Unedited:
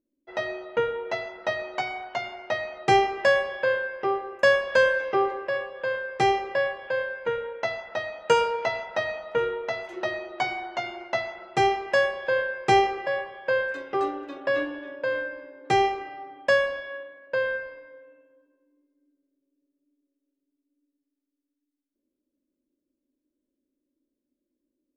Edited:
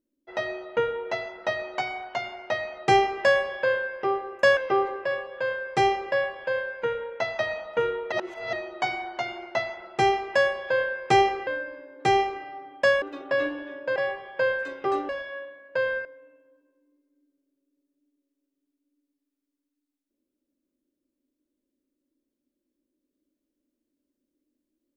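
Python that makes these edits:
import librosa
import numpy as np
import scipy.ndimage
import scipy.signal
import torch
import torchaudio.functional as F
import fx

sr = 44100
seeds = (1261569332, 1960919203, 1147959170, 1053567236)

y = fx.edit(x, sr, fx.cut(start_s=4.57, length_s=0.43),
    fx.cut(start_s=7.82, length_s=1.15),
    fx.reverse_span(start_s=9.7, length_s=0.41),
    fx.swap(start_s=13.05, length_s=1.13, other_s=15.12, other_length_s=1.55),
    fx.cut(start_s=17.63, length_s=0.27), tone=tone)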